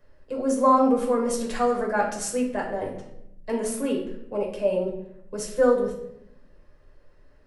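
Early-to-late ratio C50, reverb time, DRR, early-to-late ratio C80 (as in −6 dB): 6.0 dB, 0.80 s, −2.0 dB, 9.5 dB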